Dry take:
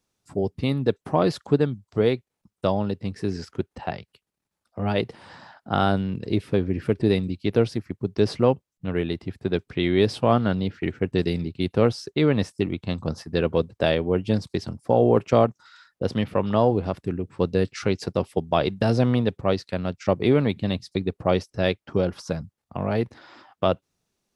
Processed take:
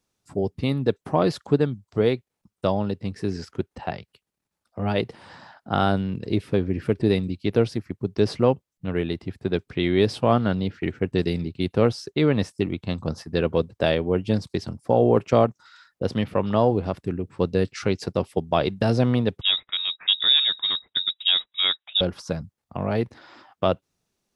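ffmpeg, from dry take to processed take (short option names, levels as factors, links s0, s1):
-filter_complex "[0:a]asettb=1/sr,asplit=3[s0][s1][s2];[s0]atrim=end=19.414[s3];[s1]atrim=start=19.41:end=22.01,asetpts=PTS-STARTPTS,afade=t=in:d=0.004:c=qsin,afade=t=out:st=2.596:d=0.004:c=qsin,lowpass=f=3300:t=q:w=0.5098,lowpass=f=3300:t=q:w=0.6013,lowpass=f=3300:t=q:w=0.9,lowpass=f=3300:t=q:w=2.563,afreqshift=-3900[s4];[s2]atrim=start=22.006[s5];[s3][s4]acrossfade=d=0.004:c1=hsin:c2=qsin[s6];[s6][s5]acrossfade=d=0.004:c1=qsin:c2=hsin"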